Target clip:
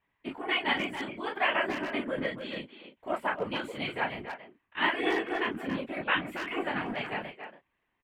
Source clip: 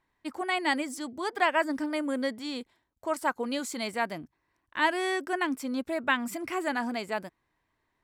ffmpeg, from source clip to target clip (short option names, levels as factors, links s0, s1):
-filter_complex "[0:a]highshelf=f=4000:t=q:w=3:g=-12,asplit=2[s0][s1];[s1]aecho=0:1:13|32|48:0.531|0.668|0.335[s2];[s0][s2]amix=inputs=2:normalize=0,afftfilt=real='hypot(re,im)*cos(2*PI*random(0))':imag='hypot(re,im)*sin(2*PI*random(1))':win_size=512:overlap=0.75,asplit=2[s3][s4];[s4]adelay=280,highpass=300,lowpass=3400,asoftclip=type=hard:threshold=0.0631,volume=0.398[s5];[s3][s5]amix=inputs=2:normalize=0"